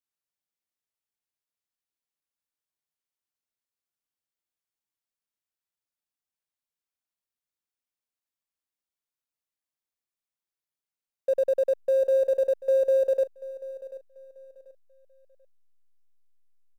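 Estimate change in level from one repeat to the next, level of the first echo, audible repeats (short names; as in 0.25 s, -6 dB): -11.0 dB, -17.0 dB, 2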